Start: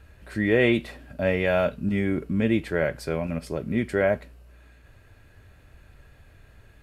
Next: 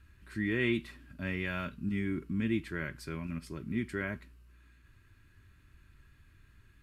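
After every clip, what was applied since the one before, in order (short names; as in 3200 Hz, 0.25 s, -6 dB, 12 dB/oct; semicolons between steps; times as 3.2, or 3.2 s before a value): band shelf 610 Hz -15 dB 1.1 oct; gain -8 dB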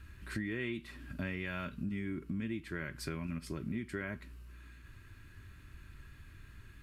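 compressor 8:1, threshold -42 dBFS, peak gain reduction 16 dB; gain +7 dB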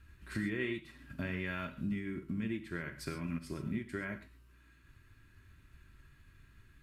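reverb, pre-delay 3 ms, DRR 6 dB; upward expander 1.5:1, over -52 dBFS; gain +1.5 dB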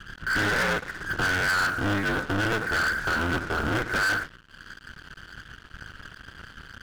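cycle switcher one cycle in 2, inverted; synth low-pass 1500 Hz, resonance Q 9.4; sample leveller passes 5; gain -3.5 dB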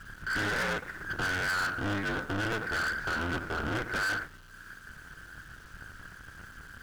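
zero-crossing step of -41.5 dBFS; gain -6.5 dB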